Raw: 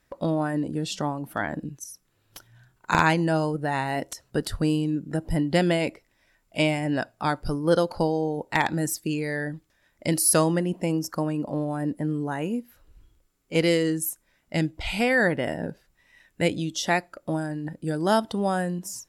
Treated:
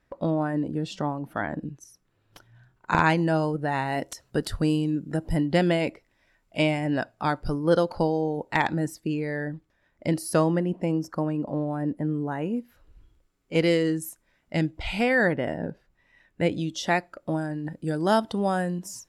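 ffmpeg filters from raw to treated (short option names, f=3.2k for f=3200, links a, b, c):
-af "asetnsamples=n=441:p=0,asendcmd='3.04 lowpass f 4100;3.92 lowpass f 8600;5.46 lowpass f 4100;8.74 lowpass f 1700;12.57 lowpass f 3700;15.33 lowpass f 1800;16.52 lowpass f 3900;17.65 lowpass f 6600',lowpass=f=2.1k:p=1"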